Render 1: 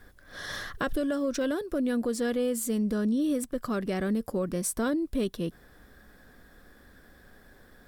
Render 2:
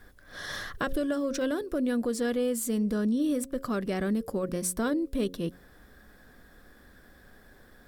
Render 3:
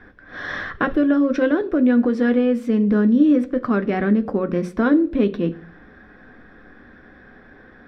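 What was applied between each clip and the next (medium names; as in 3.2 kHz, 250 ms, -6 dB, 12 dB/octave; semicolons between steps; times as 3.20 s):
de-hum 90.31 Hz, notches 6
distance through air 250 m; reverberation RT60 0.45 s, pre-delay 3 ms, DRR 8.5 dB; trim +5.5 dB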